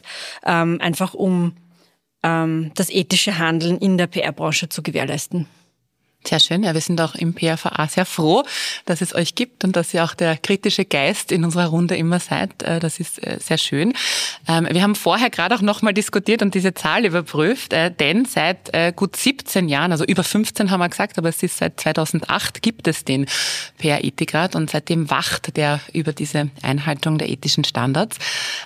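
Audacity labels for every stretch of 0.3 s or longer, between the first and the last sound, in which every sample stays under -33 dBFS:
1.510000	2.240000	silence
5.440000	6.260000	silence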